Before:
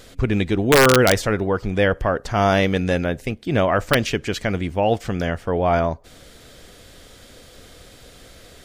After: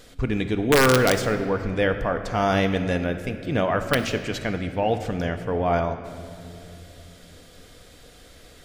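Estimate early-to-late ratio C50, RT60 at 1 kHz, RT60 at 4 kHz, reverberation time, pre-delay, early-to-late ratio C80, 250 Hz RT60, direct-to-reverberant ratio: 9.0 dB, 2.4 s, 1.8 s, 2.8 s, 4 ms, 10.5 dB, 3.6 s, 7.0 dB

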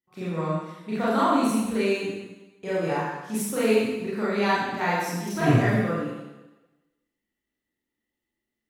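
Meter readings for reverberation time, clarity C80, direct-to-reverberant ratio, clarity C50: 1.1 s, 1.0 dB, −10.0 dB, −2.0 dB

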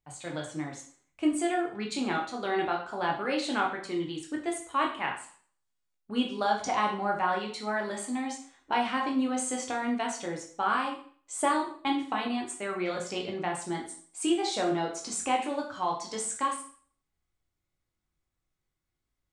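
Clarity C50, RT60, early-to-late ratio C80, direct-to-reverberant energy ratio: 7.0 dB, 0.50 s, 11.0 dB, 0.0 dB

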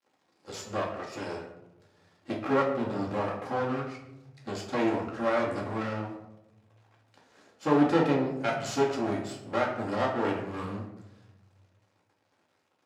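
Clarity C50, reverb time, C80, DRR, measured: 5.5 dB, 0.95 s, 8.5 dB, −2.5 dB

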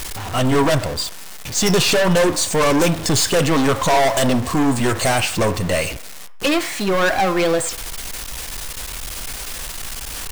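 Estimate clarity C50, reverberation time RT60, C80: 14.0 dB, 0.65 s, 17.0 dB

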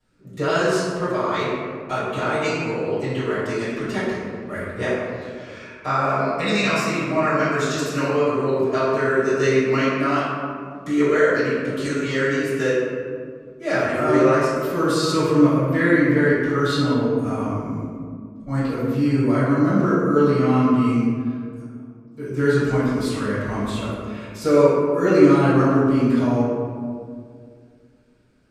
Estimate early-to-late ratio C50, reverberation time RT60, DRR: −3.0 dB, 2.1 s, −15.5 dB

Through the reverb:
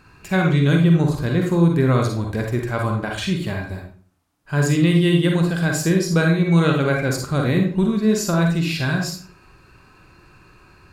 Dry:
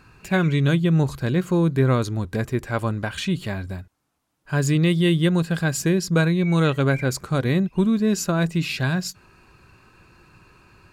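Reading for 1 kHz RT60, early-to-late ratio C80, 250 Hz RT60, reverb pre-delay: 0.45 s, 9.5 dB, 0.50 s, 38 ms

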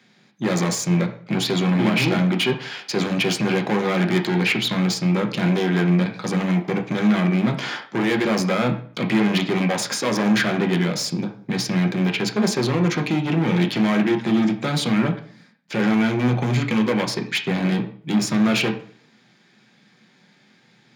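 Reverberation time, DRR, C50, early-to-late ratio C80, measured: 0.50 s, 3.5 dB, 11.0 dB, 15.0 dB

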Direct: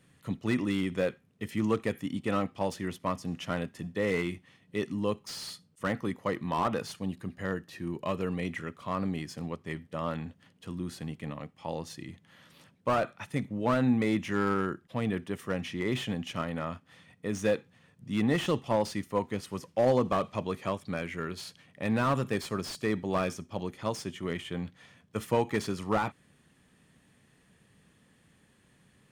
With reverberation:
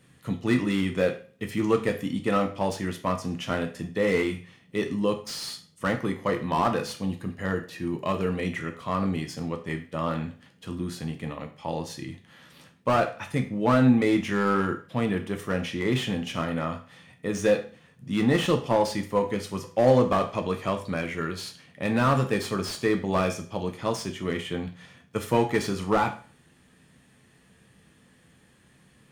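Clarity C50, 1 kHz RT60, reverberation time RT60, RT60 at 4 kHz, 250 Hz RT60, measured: 12.0 dB, 0.40 s, 0.40 s, 0.40 s, 0.45 s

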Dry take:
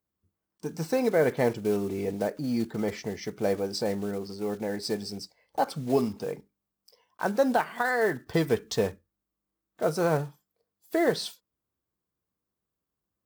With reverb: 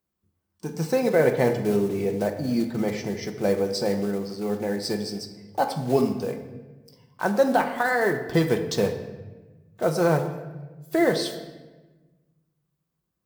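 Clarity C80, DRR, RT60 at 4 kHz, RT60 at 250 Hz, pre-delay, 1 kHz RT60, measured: 11.0 dB, 5.0 dB, 0.90 s, 1.8 s, 5 ms, 1.1 s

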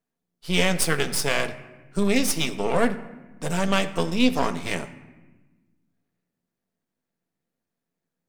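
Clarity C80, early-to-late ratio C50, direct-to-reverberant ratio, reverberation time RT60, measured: 15.5 dB, 13.5 dB, 9.0 dB, 1.2 s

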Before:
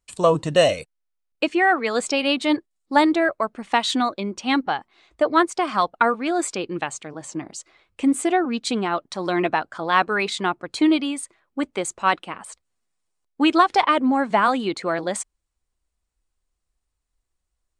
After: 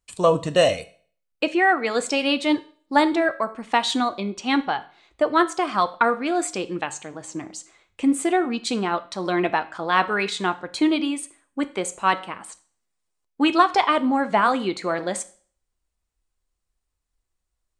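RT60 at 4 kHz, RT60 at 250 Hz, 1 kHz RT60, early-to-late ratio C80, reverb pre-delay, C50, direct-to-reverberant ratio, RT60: 0.45 s, 0.45 s, 0.45 s, 21.0 dB, 5 ms, 17.5 dB, 11.0 dB, 0.45 s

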